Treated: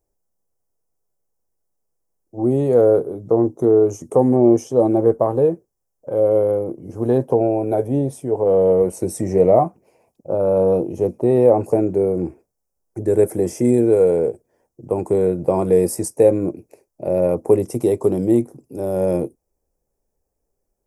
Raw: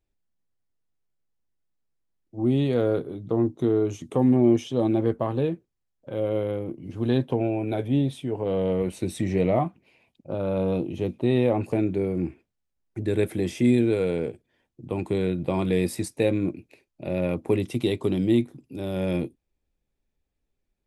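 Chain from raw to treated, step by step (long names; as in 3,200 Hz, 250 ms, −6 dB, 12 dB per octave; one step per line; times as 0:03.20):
drawn EQ curve 280 Hz 0 dB, 460 Hz +10 dB, 840 Hz +7 dB, 3,700 Hz −18 dB, 5,400 Hz +5 dB, 10,000 Hz +9 dB
level +2 dB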